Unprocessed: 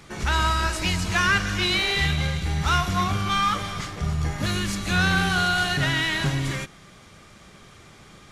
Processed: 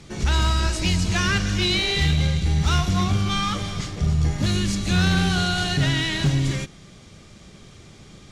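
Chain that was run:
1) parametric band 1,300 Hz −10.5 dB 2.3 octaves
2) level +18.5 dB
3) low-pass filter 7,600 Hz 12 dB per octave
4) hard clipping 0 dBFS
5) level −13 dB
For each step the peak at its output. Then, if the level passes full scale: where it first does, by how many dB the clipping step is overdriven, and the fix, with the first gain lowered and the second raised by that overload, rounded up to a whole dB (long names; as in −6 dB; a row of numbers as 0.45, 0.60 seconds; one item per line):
−14.0, +4.5, +4.5, 0.0, −13.0 dBFS
step 2, 4.5 dB
step 2 +13.5 dB, step 5 −8 dB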